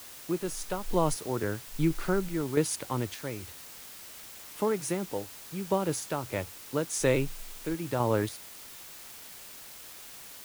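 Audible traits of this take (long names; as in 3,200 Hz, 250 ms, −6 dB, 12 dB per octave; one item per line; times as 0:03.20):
sample-and-hold tremolo, depth 75%
a quantiser's noise floor 8 bits, dither triangular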